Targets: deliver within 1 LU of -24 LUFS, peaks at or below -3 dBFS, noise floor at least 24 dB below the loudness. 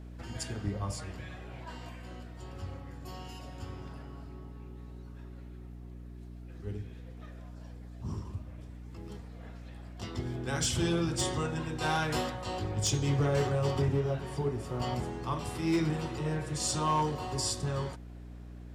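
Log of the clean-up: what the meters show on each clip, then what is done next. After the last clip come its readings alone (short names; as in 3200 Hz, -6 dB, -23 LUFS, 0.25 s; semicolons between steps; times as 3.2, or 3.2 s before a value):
clipped 0.4%; flat tops at -22.0 dBFS; hum 60 Hz; harmonics up to 300 Hz; hum level -43 dBFS; loudness -33.5 LUFS; peak -22.0 dBFS; loudness target -24.0 LUFS
-> clip repair -22 dBFS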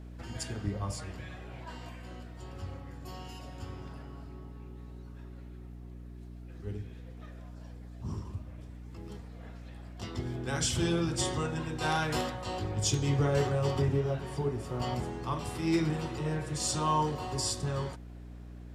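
clipped 0.0%; hum 60 Hz; harmonics up to 300 Hz; hum level -43 dBFS
-> notches 60/120/180/240/300 Hz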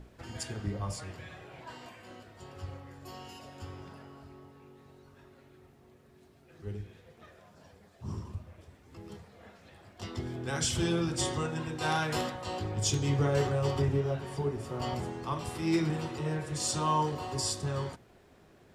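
hum none; loudness -32.5 LUFS; peak -13.5 dBFS; loudness target -24.0 LUFS
-> gain +8.5 dB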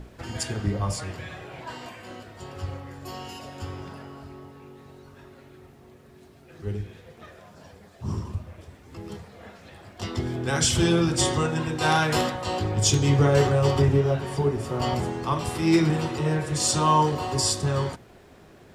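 loudness -24.0 LUFS; peak -5.0 dBFS; noise floor -51 dBFS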